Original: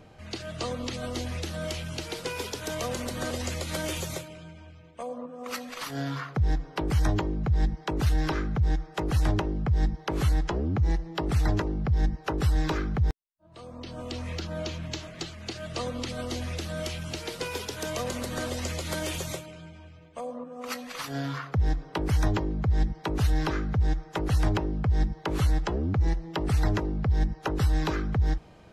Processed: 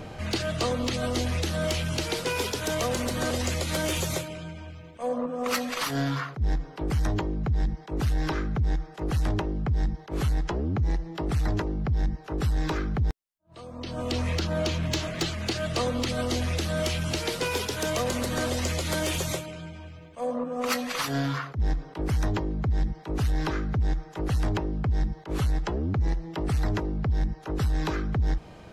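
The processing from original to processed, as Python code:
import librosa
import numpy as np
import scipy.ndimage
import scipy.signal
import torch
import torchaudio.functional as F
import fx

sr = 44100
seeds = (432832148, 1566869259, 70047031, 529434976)

y = fx.rider(x, sr, range_db=10, speed_s=0.5)
y = 10.0 ** (-21.5 / 20.0) * np.tanh(y / 10.0 ** (-21.5 / 20.0))
y = fx.attack_slew(y, sr, db_per_s=280.0)
y = y * librosa.db_to_amplitude(3.0)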